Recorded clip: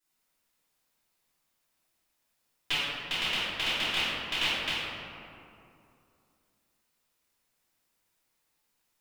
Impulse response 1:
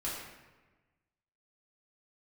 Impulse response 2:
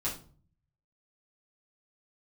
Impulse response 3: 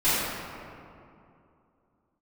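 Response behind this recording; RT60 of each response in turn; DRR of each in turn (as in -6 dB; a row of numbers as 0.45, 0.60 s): 3; 1.2, 0.45, 2.6 s; -7.5, -8.0, -16.0 dB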